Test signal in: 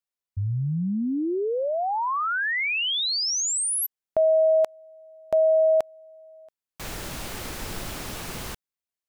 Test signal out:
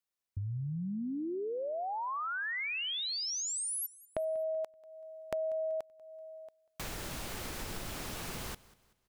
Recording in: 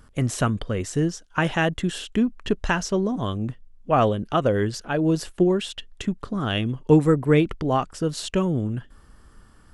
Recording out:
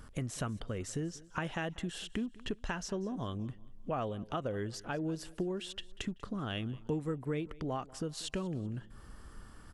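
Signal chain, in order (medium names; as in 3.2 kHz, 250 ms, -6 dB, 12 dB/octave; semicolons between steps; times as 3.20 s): compression 3:1, threshold -39 dBFS; feedback delay 191 ms, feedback 38%, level -21 dB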